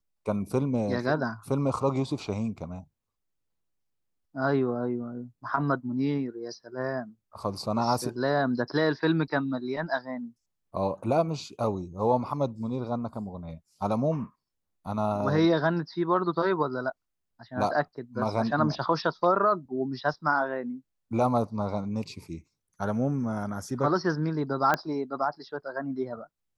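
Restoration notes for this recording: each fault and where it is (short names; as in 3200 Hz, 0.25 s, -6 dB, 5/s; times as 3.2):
24.74 pop -11 dBFS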